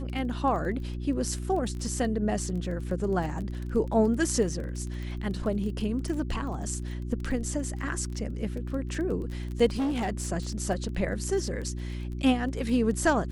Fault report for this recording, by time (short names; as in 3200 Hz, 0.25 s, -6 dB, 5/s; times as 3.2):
crackle 19/s -34 dBFS
hum 60 Hz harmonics 6 -34 dBFS
9.77–10.28 clipped -24.5 dBFS